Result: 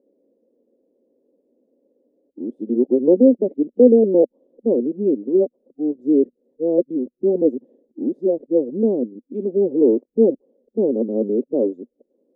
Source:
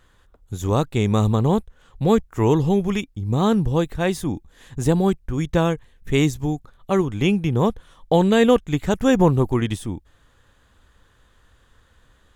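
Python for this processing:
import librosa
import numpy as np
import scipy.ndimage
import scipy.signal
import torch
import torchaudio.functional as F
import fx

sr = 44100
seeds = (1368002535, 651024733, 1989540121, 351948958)

y = np.flip(x).copy()
y = scipy.signal.sosfilt(scipy.signal.ellip(3, 1.0, 50, [240.0, 560.0], 'bandpass', fs=sr, output='sos'), y)
y = y * librosa.db_to_amplitude(5.5)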